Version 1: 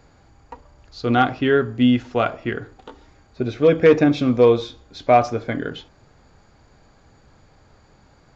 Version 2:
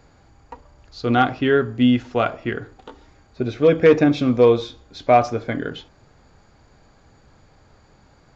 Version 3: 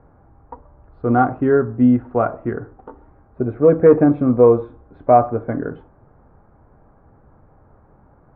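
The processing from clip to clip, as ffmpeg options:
-af anull
-af "lowpass=f=1300:w=0.5412,lowpass=f=1300:w=1.3066,volume=1.33"

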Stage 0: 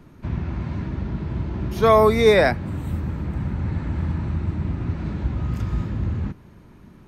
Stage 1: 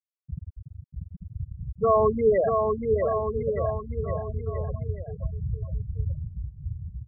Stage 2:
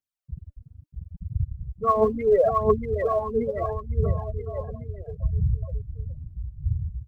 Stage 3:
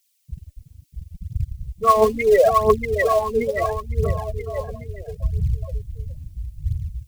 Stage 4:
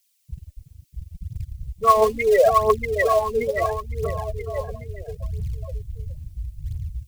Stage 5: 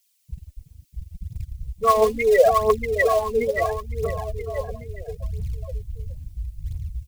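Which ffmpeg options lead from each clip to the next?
-filter_complex "[0:a]asplit=2[s0][s1];[s1]aecho=0:1:1100:0.316[s2];[s0][s2]amix=inputs=2:normalize=0,afftfilt=real='re*gte(hypot(re,im),0.562)':imag='im*gte(hypot(re,im),0.562)':win_size=1024:overlap=0.75,asplit=2[s3][s4];[s4]aecho=0:1:640|1216|1734|2201|2621:0.631|0.398|0.251|0.158|0.1[s5];[s3][s5]amix=inputs=2:normalize=0,volume=0.562"
-af "aphaser=in_gain=1:out_gain=1:delay=4.5:decay=0.71:speed=0.74:type=triangular,volume=0.841"
-af "equalizer=f=140:w=0.36:g=-8,aexciter=amount=2:drive=9.9:freq=2000,volume=2.51"
-filter_complex "[0:a]equalizer=f=230:t=o:w=0.86:g=-5,acrossover=split=370|1800|2100[s0][s1][s2][s3];[s0]alimiter=limit=0.0708:level=0:latency=1:release=46[s4];[s4][s1][s2][s3]amix=inputs=4:normalize=0"
-af "aecho=1:1:4.1:0.31"

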